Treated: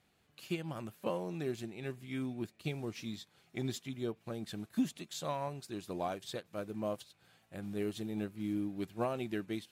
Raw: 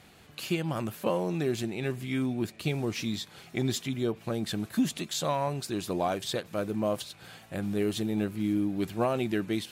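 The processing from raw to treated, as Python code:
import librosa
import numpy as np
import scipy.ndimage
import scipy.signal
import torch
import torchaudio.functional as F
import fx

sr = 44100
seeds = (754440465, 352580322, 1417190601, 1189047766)

y = fx.upward_expand(x, sr, threshold_db=-46.0, expansion=1.5)
y = y * 10.0 ** (-5.0 / 20.0)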